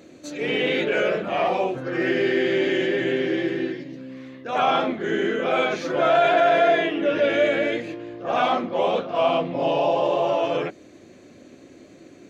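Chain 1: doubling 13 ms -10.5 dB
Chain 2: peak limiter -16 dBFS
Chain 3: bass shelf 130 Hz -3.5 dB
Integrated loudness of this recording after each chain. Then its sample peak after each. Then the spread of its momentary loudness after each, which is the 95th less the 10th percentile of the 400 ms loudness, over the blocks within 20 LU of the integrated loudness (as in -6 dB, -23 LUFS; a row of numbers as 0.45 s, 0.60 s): -22.0 LUFS, -25.0 LUFS, -22.5 LUFS; -7.0 dBFS, -16.0 dBFS, -9.0 dBFS; 12 LU, 7 LU, 12 LU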